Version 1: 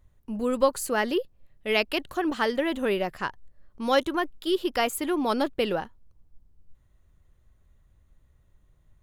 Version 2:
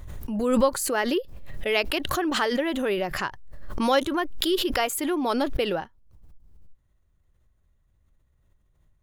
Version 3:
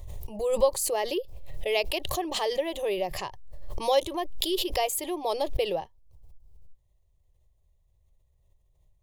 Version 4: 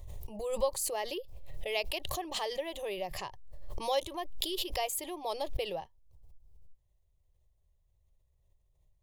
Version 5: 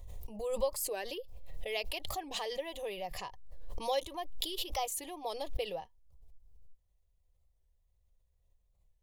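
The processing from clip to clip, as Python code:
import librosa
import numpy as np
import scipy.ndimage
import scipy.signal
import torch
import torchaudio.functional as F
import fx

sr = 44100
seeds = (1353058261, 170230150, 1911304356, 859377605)

y1 = fx.noise_reduce_blind(x, sr, reduce_db=7)
y1 = fx.pre_swell(y1, sr, db_per_s=37.0)
y2 = fx.fixed_phaser(y1, sr, hz=600.0, stages=4)
y3 = fx.dynamic_eq(y2, sr, hz=370.0, q=1.0, threshold_db=-38.0, ratio=4.0, max_db=-5)
y3 = y3 * librosa.db_to_amplitude(-5.0)
y4 = y3 + 0.37 * np.pad(y3, (int(4.1 * sr / 1000.0), 0))[:len(y3)]
y4 = fx.record_warp(y4, sr, rpm=45.0, depth_cents=160.0)
y4 = y4 * librosa.db_to_amplitude(-3.0)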